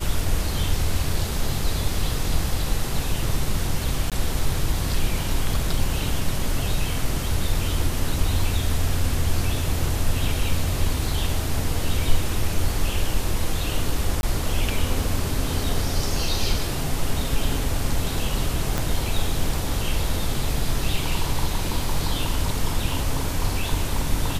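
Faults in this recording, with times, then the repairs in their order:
0:04.10–0:04.12: drop-out 17 ms
0:14.21–0:14.23: drop-out 21 ms
0:18.78: click −9 dBFS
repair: click removal
repair the gap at 0:04.10, 17 ms
repair the gap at 0:14.21, 21 ms

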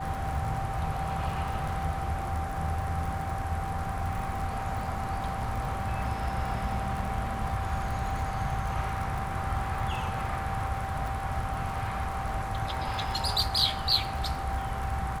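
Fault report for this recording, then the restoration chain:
surface crackle 56 per second −35 dBFS
whistle 780 Hz −35 dBFS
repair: click removal
notch filter 780 Hz, Q 30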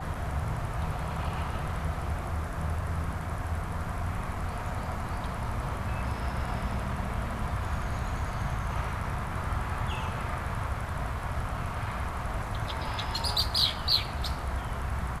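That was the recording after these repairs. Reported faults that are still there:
none of them is left

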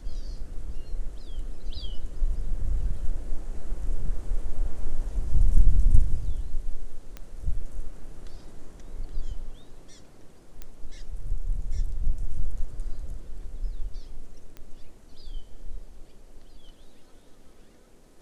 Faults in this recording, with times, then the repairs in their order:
0:07.17: click −23 dBFS
0:10.62: click −22 dBFS
0:14.57: click −27 dBFS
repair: click removal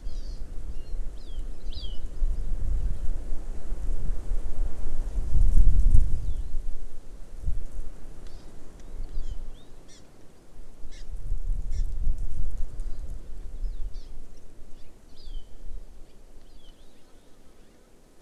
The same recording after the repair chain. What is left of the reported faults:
none of them is left

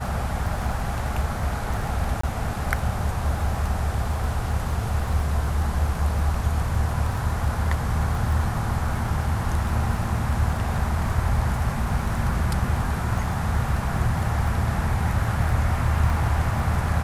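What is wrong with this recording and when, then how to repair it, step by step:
surface crackle 21 per second −30 dBFS
0:02.21–0:02.23: drop-out 24 ms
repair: click removal
repair the gap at 0:02.21, 24 ms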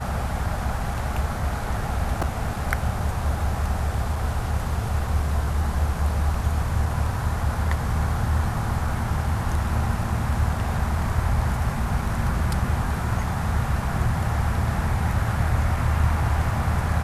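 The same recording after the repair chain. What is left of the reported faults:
none of them is left

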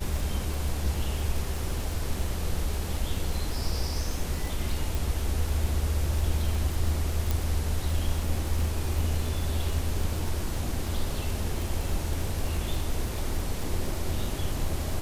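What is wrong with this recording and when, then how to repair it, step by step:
surface crackle 38 per second −30 dBFS
0:04.95: click
0:07.31: click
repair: click removal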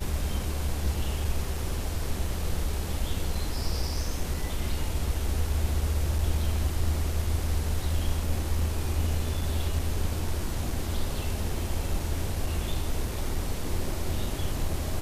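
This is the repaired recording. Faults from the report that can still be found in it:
none of them is left

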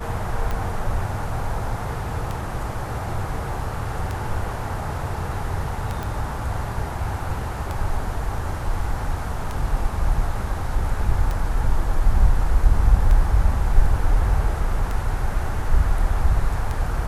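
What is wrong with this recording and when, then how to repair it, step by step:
scratch tick 33 1/3 rpm
0:06.03: click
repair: click removal

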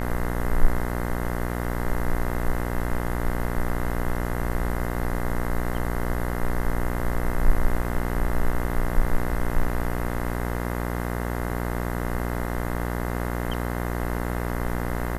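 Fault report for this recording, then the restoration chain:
mains buzz 60 Hz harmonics 35 −28 dBFS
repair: hum removal 60 Hz, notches 35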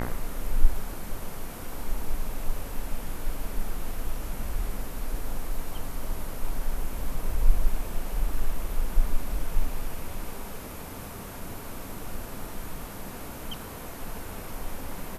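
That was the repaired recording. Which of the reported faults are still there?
none of them is left

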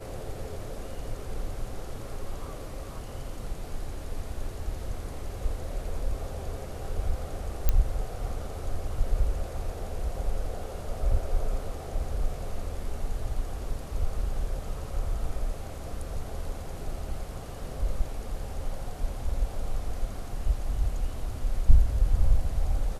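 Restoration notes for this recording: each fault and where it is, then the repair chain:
0:07.69: click −9 dBFS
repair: click removal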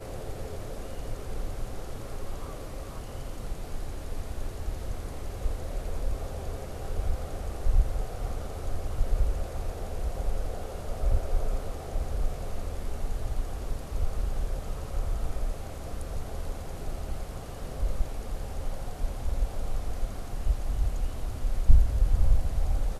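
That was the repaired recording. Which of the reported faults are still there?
none of them is left

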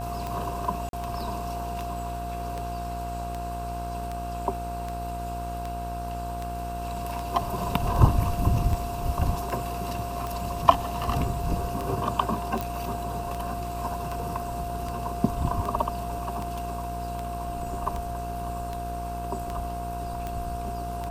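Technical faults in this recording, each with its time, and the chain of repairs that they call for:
mains buzz 60 Hz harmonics 27 −35 dBFS
scratch tick 78 rpm
whistle 700 Hz −33 dBFS
0:00.89–0:00.93: drop-out 42 ms
0:12.61: click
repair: click removal
hum removal 60 Hz, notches 27
notch filter 700 Hz, Q 30
repair the gap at 0:00.89, 42 ms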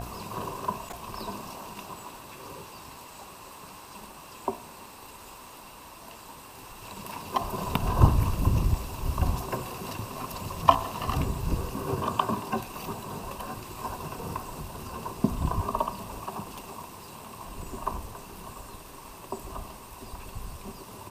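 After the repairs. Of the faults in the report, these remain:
none of them is left

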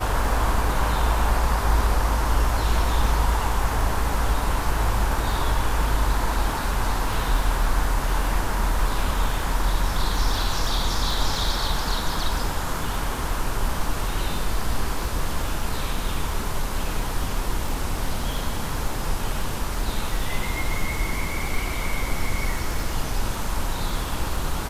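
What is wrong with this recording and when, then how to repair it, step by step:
surface crackle 27 per second −29 dBFS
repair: click removal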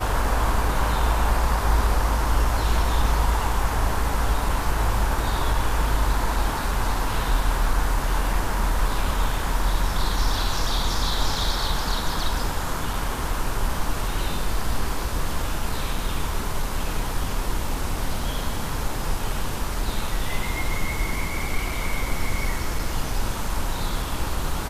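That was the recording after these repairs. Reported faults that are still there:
none of them is left

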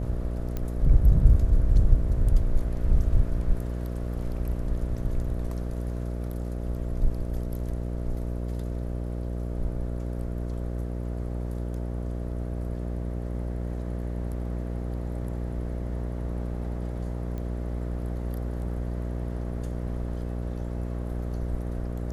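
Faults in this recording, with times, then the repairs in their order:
mains buzz 60 Hz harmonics 11 −31 dBFS
0:00.57: click −18 dBFS
0:17.38: click −25 dBFS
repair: click removal
hum removal 60 Hz, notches 11

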